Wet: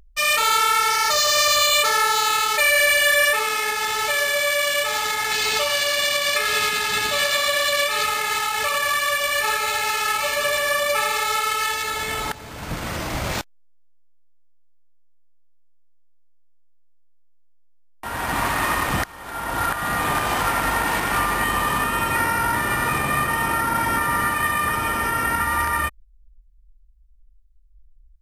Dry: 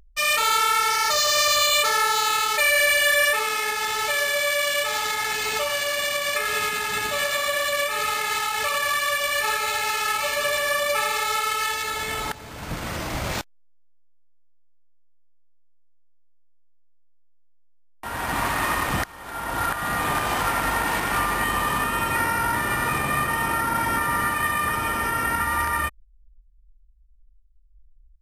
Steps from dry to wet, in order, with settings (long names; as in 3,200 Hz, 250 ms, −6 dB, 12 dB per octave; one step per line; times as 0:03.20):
0:05.31–0:08.06: parametric band 4,200 Hz +5.5 dB 1.2 octaves
level +2 dB